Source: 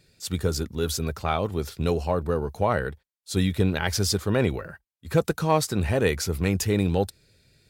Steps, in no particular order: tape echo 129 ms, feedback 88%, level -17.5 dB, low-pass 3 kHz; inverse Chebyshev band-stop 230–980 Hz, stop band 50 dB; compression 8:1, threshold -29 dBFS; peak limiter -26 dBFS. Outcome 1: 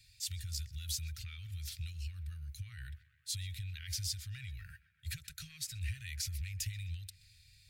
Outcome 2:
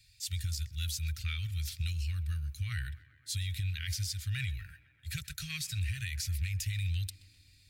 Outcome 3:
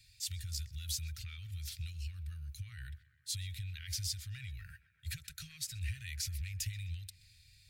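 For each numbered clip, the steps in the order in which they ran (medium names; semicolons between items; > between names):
compression > tape echo > peak limiter > inverse Chebyshev band-stop; inverse Chebyshev band-stop > compression > peak limiter > tape echo; compression > peak limiter > inverse Chebyshev band-stop > tape echo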